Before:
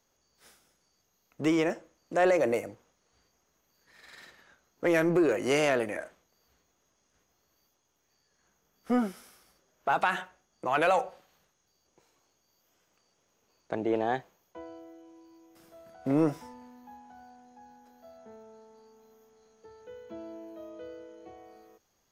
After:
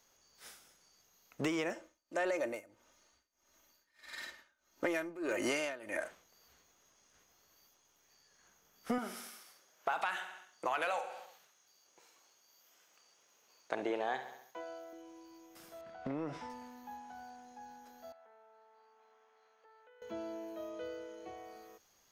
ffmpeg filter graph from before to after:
-filter_complex "[0:a]asettb=1/sr,asplit=3[a][b][c];[a]atrim=end=1.734[d];[b]atrim=start=1.73:end=6.02,asetpts=PTS-STARTPTS,afade=t=in:d=0.004:c=qsin,afade=t=out:st=4.286:d=0.004:c=qsin,aecho=1:1:3.3:0.5,atrim=end_sample=189189,tremolo=f=1.6:d=0.93[e];[c]atrim=start=6.016[f];[d][e]acrossfade=d=0.004:c1=hsin:c2=qsin[g];[g][f]acrossfade=d=0.004:c1=qsin:c2=hsin,asettb=1/sr,asplit=3[h][i][j];[h]atrim=end=8.984[k];[i]atrim=start=8.98:end=14.93,asetpts=PTS-STARTPTS,afade=t=in:d=0.004:c=qsin,afade=t=out:st=5.946:d=0.004:c=qsin,highpass=f=450:p=1,asplit=2[l][m];[m]adelay=47,volume=-13dB[n];[l][n]amix=inputs=2:normalize=0,atrim=end_sample=262395,aecho=1:1:68|136|204|272|340:0.178|0.0907|0.0463|0.0236|0.012,atrim=end_sample=262395[o];[j]atrim=start=14.926[p];[k][o]acrossfade=d=0.004:c1=hsin:c2=qsin[q];[q][p]acrossfade=d=0.004:c1=qsin:c2=hsin,asettb=1/sr,asplit=3[r][s][t];[r]atrim=end=15.814[u];[s]atrim=start=15.81:end=16.5,asetpts=PTS-STARTPTS,afade=t=in:d=0.004:c=qsin,afade=t=out:st=0.686:d=0.004:c=qsin,lowpass=3.8k,acompressor=threshold=-33dB:ratio=10:attack=3.2:release=140:knee=1:detection=peak[v];[t]atrim=start=16.496[w];[u][v]acrossfade=d=0.004:c1=hsin:c2=qsin[x];[x][w]acrossfade=d=0.004:c1=qsin:c2=hsin,asettb=1/sr,asplit=3[y][z][aa];[y]atrim=end=18.124[ab];[z]atrim=start=18.12:end=20.02,asetpts=PTS-STARTPTS,afade=t=in:d=0.004:c=qsin,afade=t=out:st=1.896:d=0.004:c=qsin,acompressor=threshold=-56dB:ratio=3:attack=3.2:release=140:knee=1:detection=peak,highpass=770,lowpass=2.3k[ac];[aa]atrim=start=20.016[ad];[ab][ac]acrossfade=d=0.004:c1=hsin:c2=qsin[ae];[ae][ad]acrossfade=d=0.004:c1=qsin:c2=hsin,tiltshelf=f=650:g=-4,acompressor=threshold=-33dB:ratio=8,volume=1.5dB"

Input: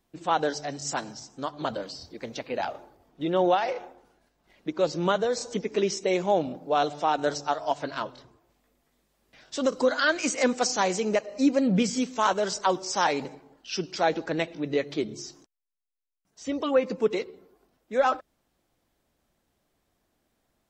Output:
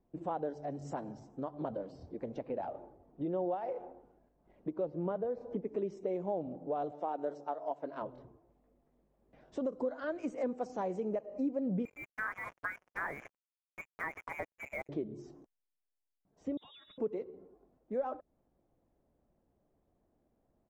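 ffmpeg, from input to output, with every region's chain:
-filter_complex "[0:a]asettb=1/sr,asplit=3[a][b][c];[a]atrim=end=4.854[d];[b]atrim=start=4.85:end=5.65,asetpts=PTS-STARTPTS,afade=t=in:d=0.004:c=qsin,afade=t=out:st=0.796:d=0.004:c=qsin,lowpass=3.7k,aemphasis=mode=reproduction:type=50fm[e];[c]atrim=start=5.646[f];[d][e]acrossfade=d=0.004:c1=hsin:c2=qsin[g];[g][f]acrossfade=d=0.004:c1=qsin:c2=hsin,asettb=1/sr,asplit=3[h][i][j];[h]atrim=end=6.914[k];[i]atrim=start=6.91:end=8.02,asetpts=PTS-STARTPTS,afade=t=in:d=0.004:c=qsin,afade=t=out:st=1.106:d=0.004:c=qsin,agate=range=-33dB:threshold=-40dB:ratio=3:release=100:detection=peak,highpass=260[l];[j]atrim=start=8.016[m];[k][l]acrossfade=d=0.004:c1=hsin:c2=qsin[n];[n][m]acrossfade=d=0.004:c1=qsin:c2=hsin,asettb=1/sr,asplit=3[o][p][q];[o]atrim=end=11.854[r];[p]atrim=start=11.85:end=14.89,asetpts=PTS-STARTPTS,afade=t=in:d=0.004:c=qsin,afade=t=out:st=3.036:d=0.004:c=qsin,equalizer=f=1.1k:w=2.2:g=8.5,lowpass=f=2.2k:t=q:w=0.5098,lowpass=f=2.2k:t=q:w=0.6013,lowpass=f=2.2k:t=q:w=0.9,lowpass=f=2.2k:t=q:w=2.563,afreqshift=-2600,acrusher=bits=4:mix=0:aa=0.5[s];[q]atrim=start=14.886[t];[r][s]acrossfade=d=0.004:c1=hsin:c2=qsin[u];[u][t]acrossfade=d=0.004:c1=qsin:c2=hsin,asettb=1/sr,asplit=3[v][w][x];[v]atrim=end=16.574[y];[w]atrim=start=16.57:end=16.98,asetpts=PTS-STARTPTS,afade=t=in:d=0.004:c=qsin,afade=t=out:st=0.406:d=0.004:c=qsin,lowpass=f=3.4k:t=q:w=0.5098,lowpass=f=3.4k:t=q:w=0.6013,lowpass=f=3.4k:t=q:w=0.9,lowpass=f=3.4k:t=q:w=2.563,afreqshift=-4000,acompressor=threshold=-31dB:ratio=10:attack=3.2:release=140:knee=1:detection=peak[z];[x]atrim=start=16.976[aa];[y][z]acrossfade=d=0.004:c1=hsin:c2=qsin[ab];[ab][aa]acrossfade=d=0.004:c1=qsin:c2=hsin,firequalizer=gain_entry='entry(580,0);entry(1400,-13);entry(4400,-28);entry(8100,-25)':delay=0.05:min_phase=1,acompressor=threshold=-37dB:ratio=2.5"

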